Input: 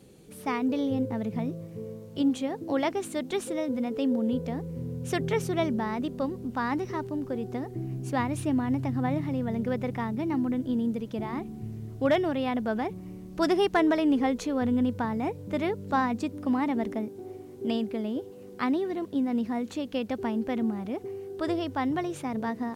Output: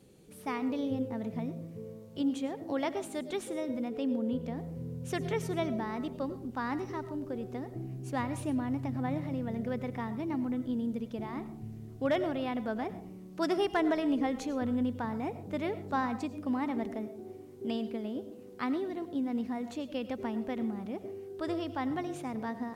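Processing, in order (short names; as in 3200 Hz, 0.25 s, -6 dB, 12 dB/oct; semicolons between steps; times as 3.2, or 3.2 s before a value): 3.88–4.58 tone controls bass 0 dB, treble -3 dB; 13.1–13.58 HPF 140 Hz; reverb RT60 0.55 s, pre-delay 60 ms, DRR 12.5 dB; gain -5.5 dB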